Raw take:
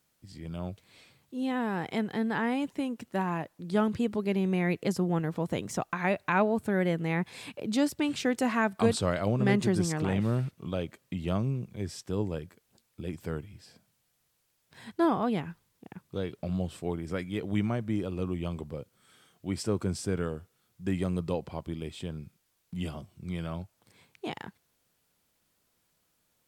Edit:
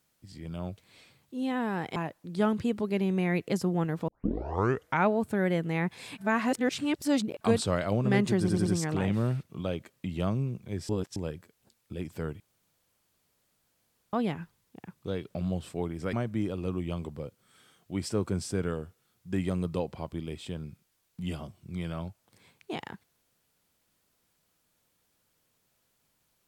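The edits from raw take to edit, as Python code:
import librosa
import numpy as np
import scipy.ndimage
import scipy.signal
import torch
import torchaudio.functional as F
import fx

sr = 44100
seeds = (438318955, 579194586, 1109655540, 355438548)

y = fx.edit(x, sr, fx.cut(start_s=1.96, length_s=1.35),
    fx.tape_start(start_s=5.43, length_s=0.97),
    fx.reverse_span(start_s=7.53, length_s=1.23),
    fx.stutter(start_s=9.74, slice_s=0.09, count=4),
    fx.reverse_span(start_s=11.97, length_s=0.27),
    fx.room_tone_fill(start_s=13.48, length_s=1.73),
    fx.cut(start_s=17.21, length_s=0.46), tone=tone)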